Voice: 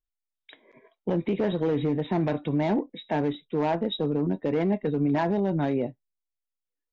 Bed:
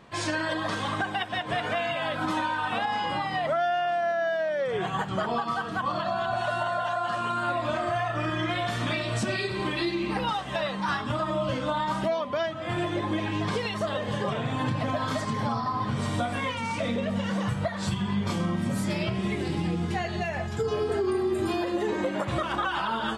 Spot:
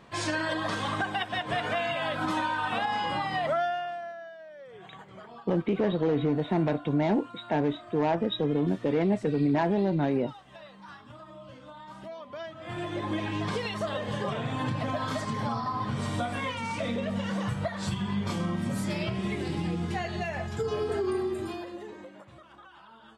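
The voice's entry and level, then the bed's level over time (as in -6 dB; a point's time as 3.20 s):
4.40 s, -0.5 dB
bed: 3.58 s -1 dB
4.35 s -19 dB
11.76 s -19 dB
13.11 s -2.5 dB
21.19 s -2.5 dB
22.39 s -24 dB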